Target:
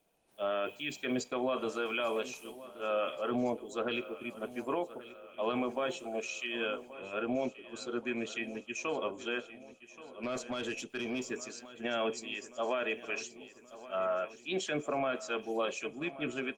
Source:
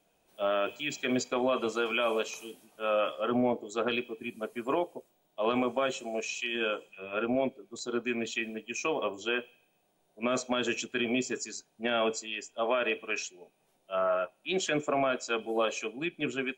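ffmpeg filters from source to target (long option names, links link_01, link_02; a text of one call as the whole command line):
ffmpeg -i in.wav -filter_complex "[0:a]asplit=2[link_01][link_02];[link_02]alimiter=limit=-24dB:level=0:latency=1:release=12,volume=-1dB[link_03];[link_01][link_03]amix=inputs=2:normalize=0,aecho=1:1:1128|2256|3384|4512|5640|6768:0.158|0.0935|0.0552|0.0326|0.0192|0.0113,asettb=1/sr,asplit=3[link_04][link_05][link_06];[link_04]atrim=end=10.234[link_07];[link_05]atrim=start=10.23:end=11.25,asetpts=PTS-STARTPTS,afade=type=in:duration=0.004:curve=qsin,afade=type=out:start_time=1.016:duration=0.004:curve=qsin,aeval=exprs='(tanh(11.2*val(0)+0.1)-tanh(0.1))/11.2':channel_layout=same[link_08];[link_06]atrim=start=11.246[link_09];[link_07][link_08]acrossfade=duration=0.004:curve1=hsin:curve2=qsin[link_10];[link_10][link_09]acrossfade=duration=0.004:curve1=qsin:curve2=hsin,volume=-8dB" -ar 48000 -c:a libopus -b:a 32k out.opus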